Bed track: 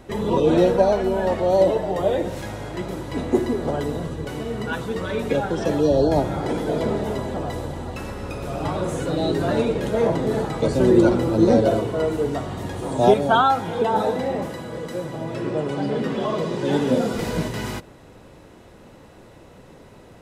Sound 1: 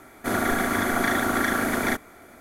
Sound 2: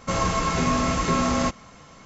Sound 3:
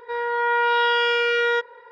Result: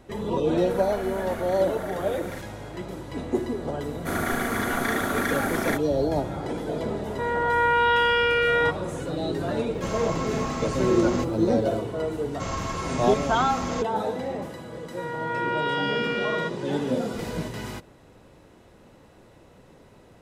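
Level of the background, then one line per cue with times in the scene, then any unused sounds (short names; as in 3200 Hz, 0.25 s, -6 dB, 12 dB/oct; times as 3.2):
bed track -6 dB
0.45 add 1 -13 dB + limiter -16.5 dBFS
3.81 add 1 -3 dB
7.1 add 3 -0.5 dB + LPF 3300 Hz
9.74 add 2 -8.5 dB + requantised 10-bit, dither triangular
12.32 add 2 -7.5 dB
14.88 add 3 -7.5 dB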